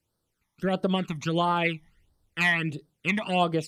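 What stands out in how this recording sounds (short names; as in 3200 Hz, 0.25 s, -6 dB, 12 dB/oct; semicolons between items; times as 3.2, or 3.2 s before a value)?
phasing stages 12, 1.5 Hz, lowest notch 450–2500 Hz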